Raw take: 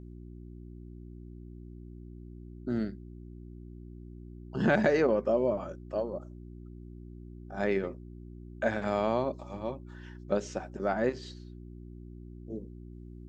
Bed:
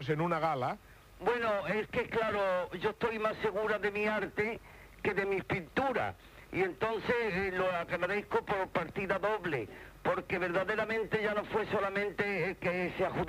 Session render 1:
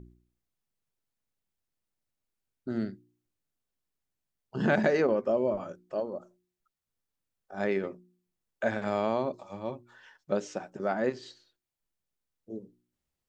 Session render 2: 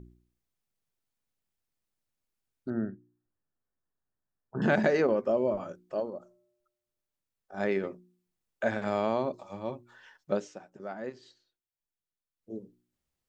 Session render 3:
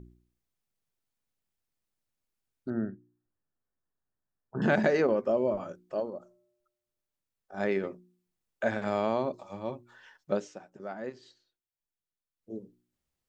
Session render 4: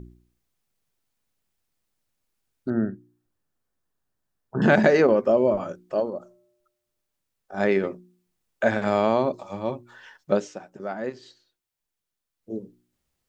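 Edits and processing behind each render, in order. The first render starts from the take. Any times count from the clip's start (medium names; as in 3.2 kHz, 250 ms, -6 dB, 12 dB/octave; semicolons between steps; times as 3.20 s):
de-hum 60 Hz, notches 6
2.70–4.62 s: brick-wall FIR low-pass 1.9 kHz; 6.10–7.54 s: feedback comb 120 Hz, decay 1.2 s, harmonics odd, mix 30%; 10.34–12.53 s: dip -9.5 dB, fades 0.18 s
no audible change
trim +7.5 dB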